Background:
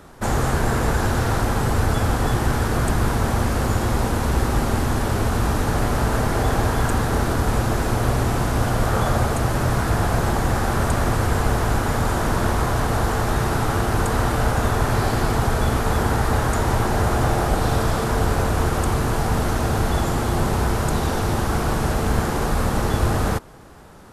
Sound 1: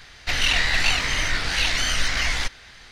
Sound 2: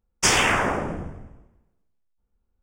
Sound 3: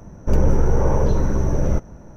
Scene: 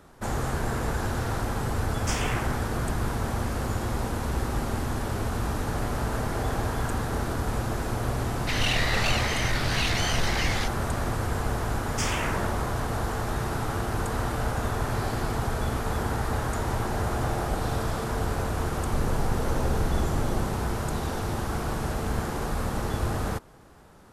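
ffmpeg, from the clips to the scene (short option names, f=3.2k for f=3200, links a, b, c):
-filter_complex "[2:a]asplit=2[a][b];[0:a]volume=-8dB[c];[1:a]asoftclip=type=tanh:threshold=-14.5dB[d];[b]acontrast=86[e];[3:a]acompressor=threshold=-22dB:ratio=6:attack=3.2:release=140:knee=1:detection=peak[f];[a]atrim=end=2.62,asetpts=PTS-STARTPTS,volume=-13dB,afade=t=in:d=0.004:c=hsin,afade=t=out:st=2.616:d=0.004:c=hsin,adelay=1840[g];[d]atrim=end=2.91,asetpts=PTS-STARTPTS,volume=-4.5dB,afade=t=in:d=0.004:c=hsin,afade=t=out:st=2.906:d=0.004:c=hsin,adelay=8200[h];[e]atrim=end=2.62,asetpts=PTS-STARTPTS,volume=-18dB,afade=t=in:d=0.004:c=hsin,afade=t=out:st=2.616:d=0.004:c=hsin,adelay=11750[i];[f]atrim=end=2.16,asetpts=PTS-STARTPTS,volume=-2dB,afade=t=in:d=0.004:c=hsin,afade=t=out:st=2.156:d=0.004:c=hsin,adelay=18660[j];[c][g][h][i][j]amix=inputs=5:normalize=0"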